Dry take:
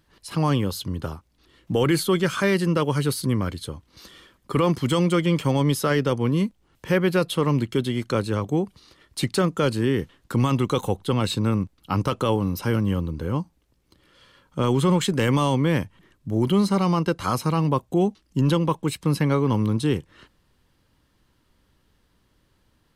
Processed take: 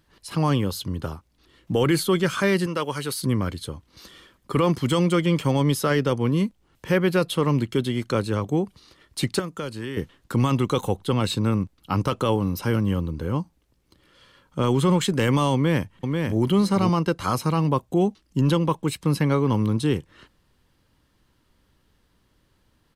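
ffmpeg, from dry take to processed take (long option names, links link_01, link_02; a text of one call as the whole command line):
ffmpeg -i in.wav -filter_complex "[0:a]asettb=1/sr,asplit=3[link_01][link_02][link_03];[link_01]atrim=end=2.664[link_04];[link_02]atrim=start=2.66:end=3.22,asetpts=PTS-STARTPTS,afade=type=in:duration=0.004:curve=qsin,afade=type=out:start_time=0.556:duration=0.004:curve=qsin,lowshelf=frequency=340:gain=-12[link_05];[link_03]atrim=start=3.216[link_06];[link_04][link_05]acrossfade=duration=0.004:curve1=hsin:curve2=qsin[link_07];[link_07][link_06]acrossfade=duration=0.004:curve1=qsin:curve2=hsin,asettb=1/sr,asplit=3[link_08][link_09][link_10];[link_08]atrim=end=9.394[link_11];[link_09]atrim=start=9.39:end=9.97,asetpts=PTS-STARTPTS,afade=type=in:duration=0.004:curve=qsin,afade=type=out:start_time=0.576:duration=0.004:curve=qsin,acrossover=split=810|7100[link_12][link_13][link_14];[link_12]acompressor=threshold=-31dB:ratio=4[link_15];[link_13]acompressor=threshold=-36dB:ratio=4[link_16];[link_14]acompressor=threshold=-54dB:ratio=4[link_17];[link_15][link_16][link_17]amix=inputs=3:normalize=0[link_18];[link_10]atrim=start=9.966[link_19];[link_11][link_18]acrossfade=duration=0.004:curve1=hsin:curve2=qsin[link_20];[link_20][link_19]acrossfade=duration=0.004:curve1=qsin:curve2=hsin,asplit=2[link_21][link_22];[link_22]afade=type=in:start_time=15.54:duration=0.01,afade=type=out:start_time=16.4:duration=0.01,aecho=0:1:490|980:0.630957|0.0630957[link_23];[link_21][link_23]amix=inputs=2:normalize=0" out.wav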